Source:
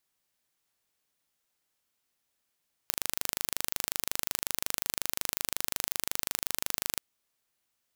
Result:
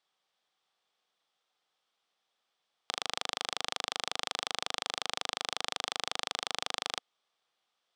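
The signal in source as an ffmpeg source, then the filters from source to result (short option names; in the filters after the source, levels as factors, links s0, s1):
-f lavfi -i "aevalsrc='0.794*eq(mod(n,1729),0)':d=4.08:s=44100"
-af "highpass=210,equalizer=f=270:t=q:w=4:g=-6,equalizer=f=490:t=q:w=4:g=4,equalizer=f=760:t=q:w=4:g=8,equalizer=f=1200:t=q:w=4:g=7,equalizer=f=3400:t=q:w=4:g=8,equalizer=f=6800:t=q:w=4:g=-7,lowpass=f=7100:w=0.5412,lowpass=f=7100:w=1.3066"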